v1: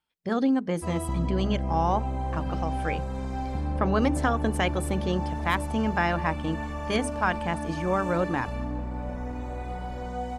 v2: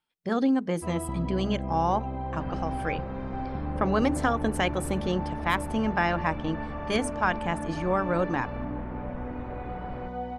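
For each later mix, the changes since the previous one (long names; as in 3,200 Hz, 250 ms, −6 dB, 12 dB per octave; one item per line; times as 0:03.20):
first sound: add high-frequency loss of the air 310 metres
second sound +8.0 dB
master: add parametric band 63 Hz −6.5 dB 1.1 octaves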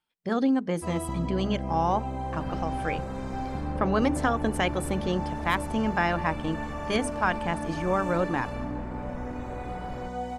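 first sound: remove high-frequency loss of the air 310 metres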